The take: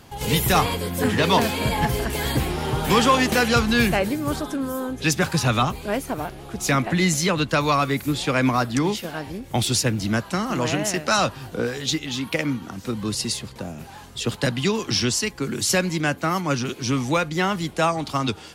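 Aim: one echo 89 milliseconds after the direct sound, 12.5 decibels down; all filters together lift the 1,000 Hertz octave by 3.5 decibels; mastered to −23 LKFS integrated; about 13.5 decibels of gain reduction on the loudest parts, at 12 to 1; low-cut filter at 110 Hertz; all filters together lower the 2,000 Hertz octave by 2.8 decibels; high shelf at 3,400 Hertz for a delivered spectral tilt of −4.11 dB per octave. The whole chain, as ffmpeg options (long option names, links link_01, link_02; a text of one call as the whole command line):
ffmpeg -i in.wav -af "highpass=110,equalizer=frequency=1000:width_type=o:gain=6,equalizer=frequency=2000:width_type=o:gain=-8,highshelf=frequency=3400:gain=5.5,acompressor=threshold=-23dB:ratio=12,aecho=1:1:89:0.237,volume=4.5dB" out.wav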